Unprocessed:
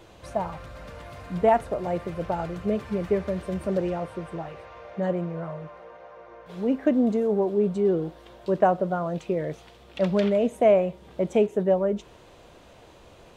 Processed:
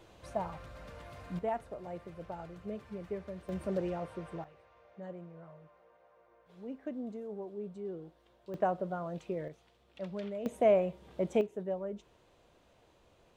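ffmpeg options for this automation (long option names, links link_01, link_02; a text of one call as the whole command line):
ffmpeg -i in.wav -af "asetnsamples=nb_out_samples=441:pad=0,asendcmd='1.39 volume volume -15dB;3.49 volume volume -8dB;4.44 volume volume -18.5dB;8.54 volume volume -10.5dB;9.48 volume volume -17dB;10.46 volume volume -7dB;11.41 volume volume -14.5dB',volume=-7.5dB" out.wav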